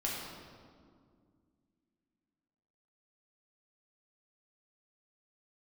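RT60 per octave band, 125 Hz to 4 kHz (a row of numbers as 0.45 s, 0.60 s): 2.8 s, 3.1 s, 2.3 s, 1.9 s, 1.4 s, 1.3 s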